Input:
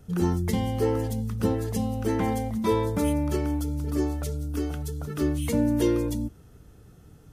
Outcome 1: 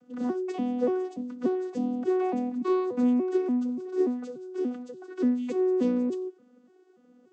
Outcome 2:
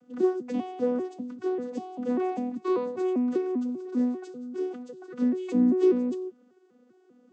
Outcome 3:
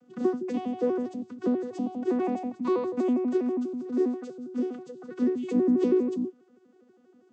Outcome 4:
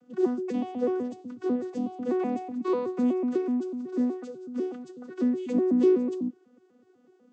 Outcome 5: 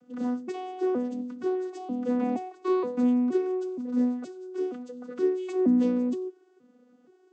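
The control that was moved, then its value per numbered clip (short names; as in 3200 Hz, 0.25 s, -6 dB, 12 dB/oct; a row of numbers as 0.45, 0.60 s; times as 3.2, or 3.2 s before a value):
arpeggiated vocoder, a note every: 290, 197, 81, 124, 471 ms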